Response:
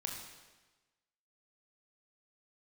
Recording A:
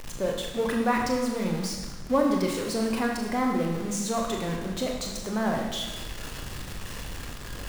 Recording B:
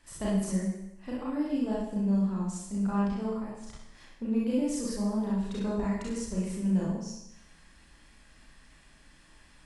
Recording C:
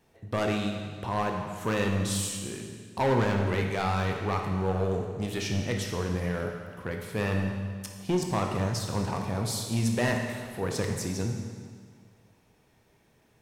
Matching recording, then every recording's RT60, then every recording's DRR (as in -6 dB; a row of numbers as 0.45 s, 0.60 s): A; 1.2 s, 0.85 s, 1.8 s; 0.5 dB, -6.5 dB, 2.0 dB